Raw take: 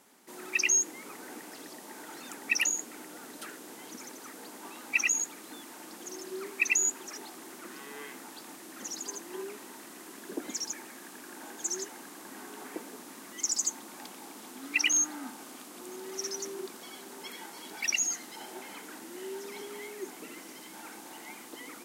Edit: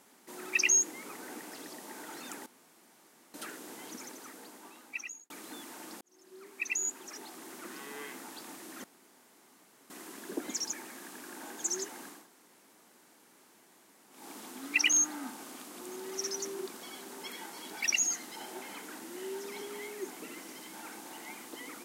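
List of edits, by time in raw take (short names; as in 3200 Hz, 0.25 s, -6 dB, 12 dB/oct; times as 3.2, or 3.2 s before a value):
2.46–3.34 room tone
3.91–5.3 fade out
6.01–7.64 fade in
8.84–9.9 room tone
12.18–14.19 room tone, crossfade 0.24 s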